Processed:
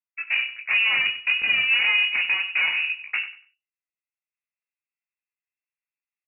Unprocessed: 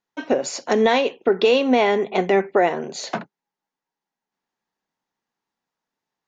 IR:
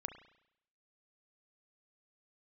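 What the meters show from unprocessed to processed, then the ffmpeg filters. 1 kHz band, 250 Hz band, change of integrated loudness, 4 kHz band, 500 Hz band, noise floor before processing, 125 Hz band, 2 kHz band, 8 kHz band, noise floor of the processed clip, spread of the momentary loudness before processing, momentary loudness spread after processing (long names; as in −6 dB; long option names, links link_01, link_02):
−16.5 dB, below −30 dB, −0.5 dB, +6.0 dB, below −30 dB, below −85 dBFS, below −20 dB, +8.5 dB, can't be measured, below −85 dBFS, 12 LU, 9 LU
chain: -filter_complex "[0:a]bandreject=frequency=50:width_type=h:width=6,bandreject=frequency=100:width_type=h:width=6,bandreject=frequency=150:width_type=h:width=6,bandreject=frequency=200:width_type=h:width=6,bandreject=frequency=250:width_type=h:width=6,afwtdn=0.0355,highpass=frequency=67:width=0.5412,highpass=frequency=67:width=1.3066,equalizer=frequency=2300:width_type=o:width=0.35:gain=-10.5,acrossover=split=110|700[link_01][link_02][link_03];[link_02]dynaudnorm=framelen=250:gausssize=3:maxgain=8dB[link_04];[link_01][link_04][link_03]amix=inputs=3:normalize=0,alimiter=limit=-6.5dB:level=0:latency=1,acompressor=threshold=-17dB:ratio=3,flanger=delay=18:depth=6.3:speed=0.36,aeval=exprs='clip(val(0),-1,0.0422)':channel_layout=same,flanger=delay=9.6:depth=6.8:regen=-55:speed=0.9:shape=sinusoidal,asplit=2[link_05][link_06];[link_06]aecho=0:1:95|190|285:0.224|0.0537|0.0129[link_07];[link_05][link_07]amix=inputs=2:normalize=0,lowpass=frequency=2500:width_type=q:width=0.5098,lowpass=frequency=2500:width_type=q:width=0.6013,lowpass=frequency=2500:width_type=q:width=0.9,lowpass=frequency=2500:width_type=q:width=2.563,afreqshift=-2900,volume=6.5dB"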